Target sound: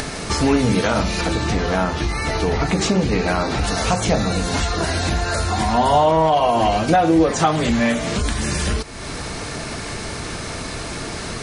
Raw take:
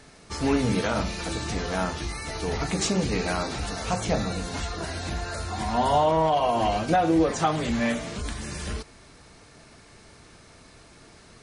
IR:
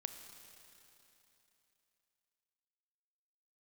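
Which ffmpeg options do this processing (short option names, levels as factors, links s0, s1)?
-filter_complex "[0:a]asettb=1/sr,asplit=3[s0][s1][s2];[s0]atrim=end=1.214[s3];[s1]atrim=start=1.21:end=3.64,asetpts=PTS-STARTPTS,afade=t=in:d=0.004:c=qsin,afade=t=out:st=2.426:d=0.004:c=qsin,lowpass=f=3300:p=1[s4];[s2]atrim=start=3.636[s5];[s3][s4]acrossfade=d=0.004:c1=hsin:c2=qsin[s6];[s6][s5]acrossfade=d=0.004:c1=qsin:c2=hsin,acompressor=mode=upward:threshold=0.112:ratio=2.5,volume=2"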